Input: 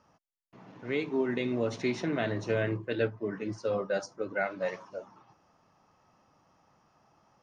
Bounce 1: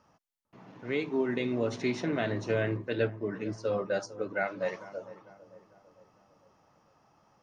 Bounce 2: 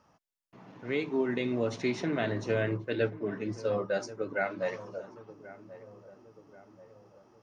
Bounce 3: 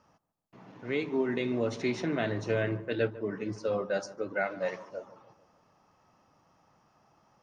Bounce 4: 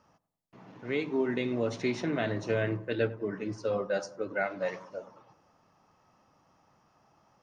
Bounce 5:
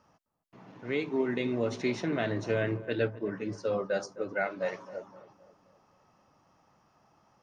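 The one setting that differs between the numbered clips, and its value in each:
filtered feedback delay, time: 450 ms, 1084 ms, 148 ms, 98 ms, 260 ms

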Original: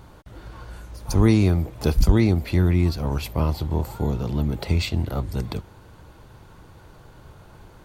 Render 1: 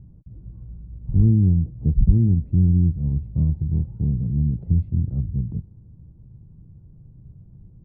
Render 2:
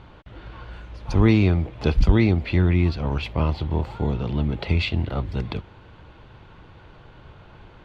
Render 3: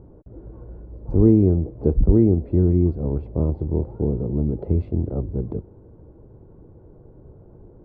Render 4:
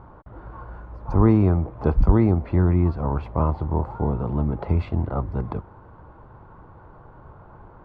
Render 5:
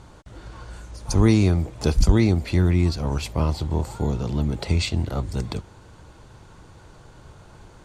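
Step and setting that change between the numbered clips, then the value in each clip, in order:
resonant low-pass, frequency: 160 Hz, 3 kHz, 420 Hz, 1.1 kHz, 7.8 kHz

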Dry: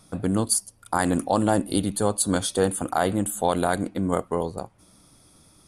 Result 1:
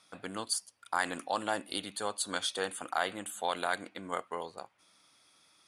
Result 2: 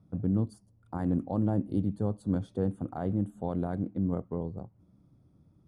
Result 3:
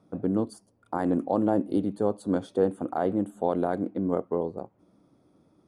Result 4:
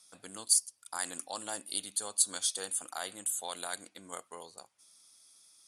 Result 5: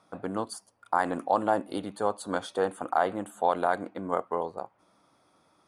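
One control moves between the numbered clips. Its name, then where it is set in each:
band-pass filter, frequency: 2.5 kHz, 120 Hz, 350 Hz, 6.5 kHz, 950 Hz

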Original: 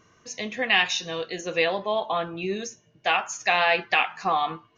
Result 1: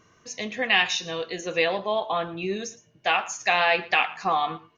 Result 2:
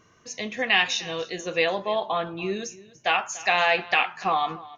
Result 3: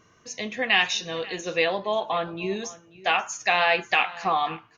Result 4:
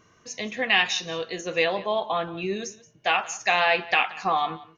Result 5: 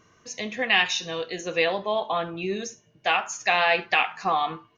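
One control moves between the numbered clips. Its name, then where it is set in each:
delay, time: 114 ms, 291 ms, 538 ms, 177 ms, 71 ms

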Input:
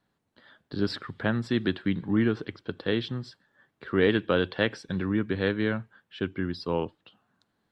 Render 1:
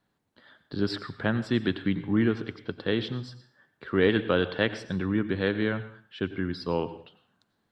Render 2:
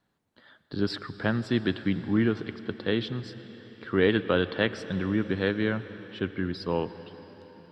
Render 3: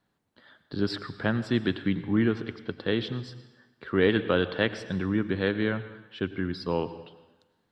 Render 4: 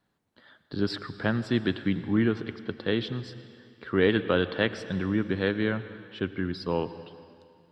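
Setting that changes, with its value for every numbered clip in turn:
plate-style reverb, RT60: 0.51 s, 5.3 s, 1.1 s, 2.4 s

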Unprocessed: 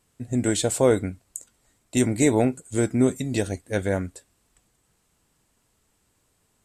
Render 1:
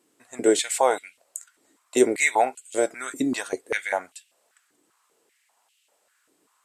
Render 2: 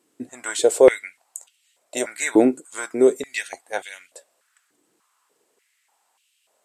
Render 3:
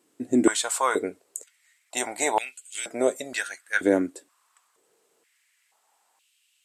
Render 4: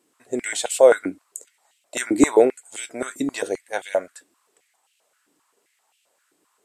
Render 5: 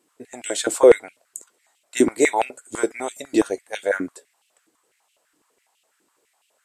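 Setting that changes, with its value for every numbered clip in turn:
step-sequenced high-pass, rate: 5.1 Hz, 3.4 Hz, 2.1 Hz, 7.6 Hz, 12 Hz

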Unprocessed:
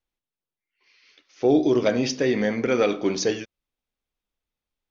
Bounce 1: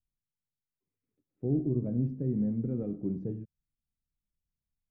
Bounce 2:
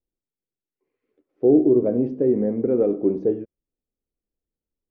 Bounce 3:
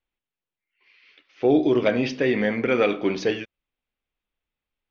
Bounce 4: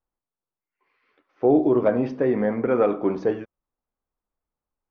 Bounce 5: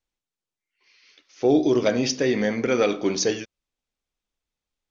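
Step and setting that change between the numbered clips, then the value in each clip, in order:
resonant low-pass, frequency: 150 Hz, 410 Hz, 2.8 kHz, 1.1 kHz, 7.3 kHz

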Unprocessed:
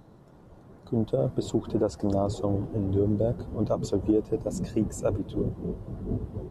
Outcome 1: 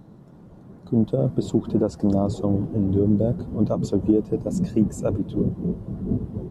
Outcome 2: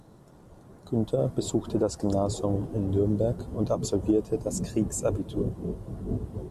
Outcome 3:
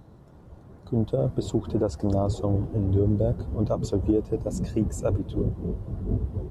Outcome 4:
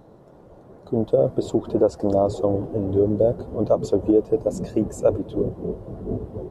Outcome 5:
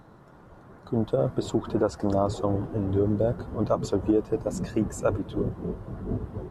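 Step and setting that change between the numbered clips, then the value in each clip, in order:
peaking EQ, frequency: 190 Hz, 9.3 kHz, 64 Hz, 530 Hz, 1.4 kHz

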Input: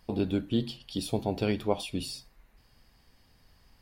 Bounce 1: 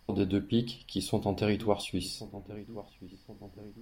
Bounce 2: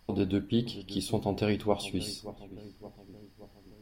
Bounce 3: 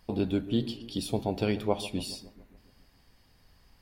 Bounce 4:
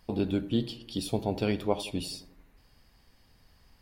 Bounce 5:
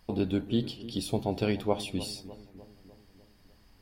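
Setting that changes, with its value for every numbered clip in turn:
filtered feedback delay, time: 1079 ms, 573 ms, 141 ms, 87 ms, 301 ms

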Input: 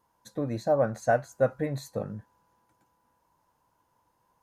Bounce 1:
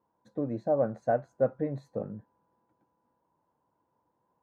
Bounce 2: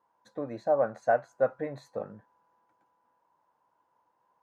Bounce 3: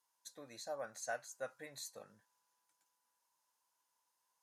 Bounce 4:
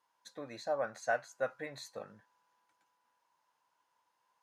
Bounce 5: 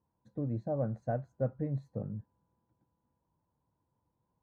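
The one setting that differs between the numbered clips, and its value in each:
band-pass filter, frequency: 320 Hz, 850 Hz, 7.7 kHz, 2.9 kHz, 110 Hz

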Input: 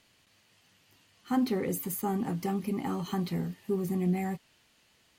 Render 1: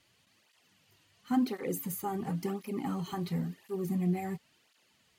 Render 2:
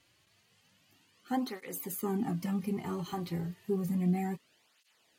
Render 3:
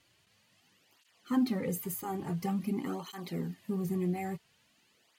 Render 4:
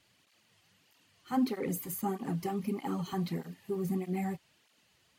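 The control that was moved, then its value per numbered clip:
cancelling through-zero flanger, nulls at: 0.95 Hz, 0.31 Hz, 0.48 Hz, 1.6 Hz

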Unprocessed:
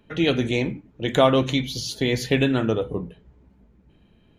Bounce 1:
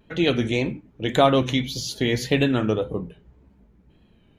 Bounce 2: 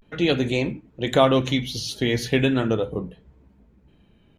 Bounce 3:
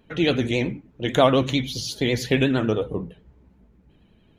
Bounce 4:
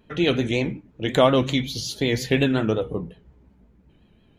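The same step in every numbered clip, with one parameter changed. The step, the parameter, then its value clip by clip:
vibrato, rate: 1.8 Hz, 0.38 Hz, 11 Hz, 5.5 Hz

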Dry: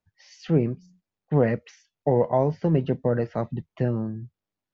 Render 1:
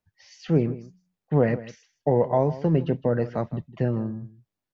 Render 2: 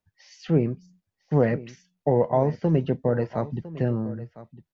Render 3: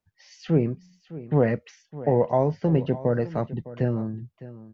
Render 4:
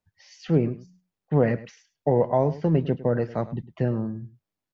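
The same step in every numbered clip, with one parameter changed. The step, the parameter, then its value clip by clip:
delay, time: 159 ms, 1005 ms, 608 ms, 104 ms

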